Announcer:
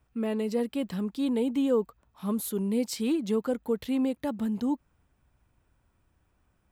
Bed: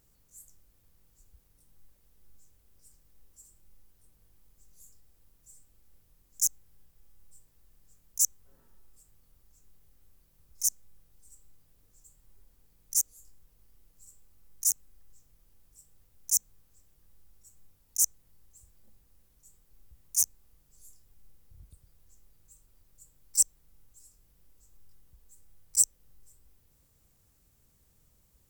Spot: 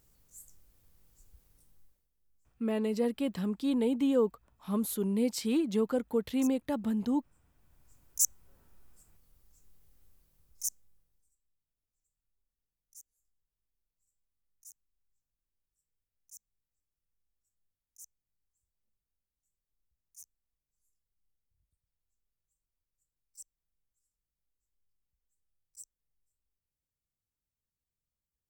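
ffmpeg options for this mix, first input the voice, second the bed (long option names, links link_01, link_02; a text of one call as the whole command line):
ffmpeg -i stem1.wav -i stem2.wav -filter_complex "[0:a]adelay=2450,volume=-1.5dB[link_01];[1:a]volume=16.5dB,afade=type=out:start_time=1.56:duration=0.52:silence=0.11885,afade=type=in:start_time=7.38:duration=0.59:silence=0.149624,afade=type=out:start_time=10.04:duration=1.32:silence=0.0562341[link_02];[link_01][link_02]amix=inputs=2:normalize=0" out.wav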